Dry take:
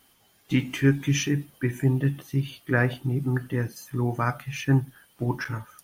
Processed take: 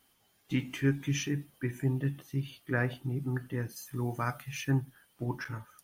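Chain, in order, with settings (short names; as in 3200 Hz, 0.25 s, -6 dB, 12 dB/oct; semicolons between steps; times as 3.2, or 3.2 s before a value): 3.69–4.71 high shelf 3700 Hz +7 dB; gain -7.5 dB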